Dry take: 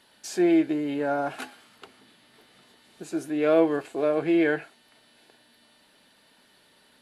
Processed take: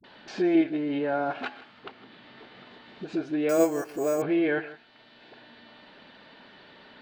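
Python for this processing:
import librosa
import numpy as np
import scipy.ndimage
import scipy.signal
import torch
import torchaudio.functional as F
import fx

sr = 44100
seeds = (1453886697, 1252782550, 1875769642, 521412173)

p1 = scipy.signal.sosfilt(scipy.signal.butter(4, 4200.0, 'lowpass', fs=sr, output='sos'), x)
p2 = fx.level_steps(p1, sr, step_db=18)
p3 = p1 + (p2 * 10.0 ** (0.0 / 20.0))
p4 = fx.dispersion(p3, sr, late='highs', ms=41.0, hz=360.0)
p5 = p4 + fx.echo_single(p4, sr, ms=159, db=-19.0, dry=0)
p6 = fx.resample_bad(p5, sr, factor=6, down='filtered', up='hold', at=(3.49, 4.22))
p7 = fx.band_squash(p6, sr, depth_pct=40)
y = p7 * 10.0 ** (-3.5 / 20.0)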